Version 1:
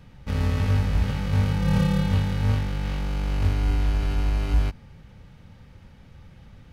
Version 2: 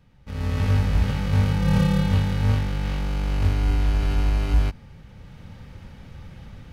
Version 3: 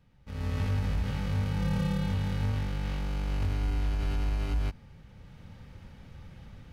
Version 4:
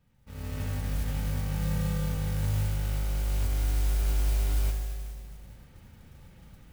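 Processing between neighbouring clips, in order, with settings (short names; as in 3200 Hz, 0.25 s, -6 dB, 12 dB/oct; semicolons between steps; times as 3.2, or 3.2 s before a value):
AGC gain up to 15.5 dB; gain -9 dB
limiter -15.5 dBFS, peak gain reduction 5 dB; gain -6.5 dB
spring tank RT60 2.3 s, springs 39/48 ms, chirp 30 ms, DRR 5 dB; modulation noise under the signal 18 dB; gain -4.5 dB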